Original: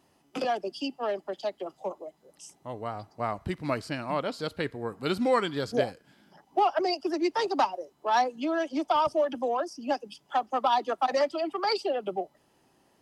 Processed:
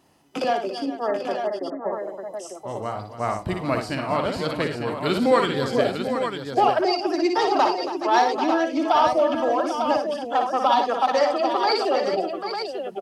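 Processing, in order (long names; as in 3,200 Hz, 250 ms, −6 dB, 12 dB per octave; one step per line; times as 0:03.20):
0:00.80–0:01.93: linear-phase brick-wall low-pass 2,100 Hz
on a send: multi-tap delay 58/103/277/423/790/898 ms −5.5/−18/−12.5/−14.5/−9.5/−7 dB
on the sum: level +4.5 dB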